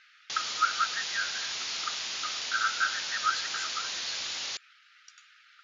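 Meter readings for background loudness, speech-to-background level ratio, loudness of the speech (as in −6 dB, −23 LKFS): −32.5 LKFS, −0.5 dB, −33.0 LKFS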